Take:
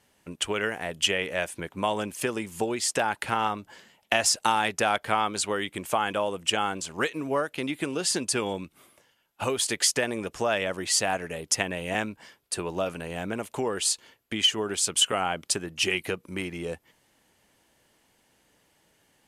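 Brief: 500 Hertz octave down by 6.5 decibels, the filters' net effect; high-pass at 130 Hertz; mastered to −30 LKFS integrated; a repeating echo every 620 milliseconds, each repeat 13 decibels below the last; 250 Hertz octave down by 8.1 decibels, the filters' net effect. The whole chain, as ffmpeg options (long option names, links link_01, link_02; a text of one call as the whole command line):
ffmpeg -i in.wav -af "highpass=130,equalizer=frequency=250:width_type=o:gain=-8.5,equalizer=frequency=500:width_type=o:gain=-6,aecho=1:1:620|1240|1860:0.224|0.0493|0.0108,volume=-1.5dB" out.wav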